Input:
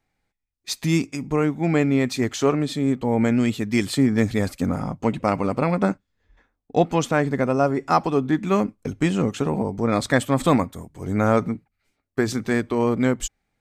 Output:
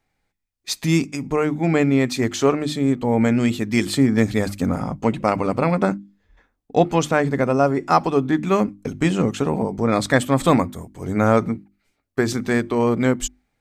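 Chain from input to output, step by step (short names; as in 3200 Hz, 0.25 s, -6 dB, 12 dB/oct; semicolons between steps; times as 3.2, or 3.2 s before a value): notches 50/100/150/200/250/300/350 Hz; gain +2.5 dB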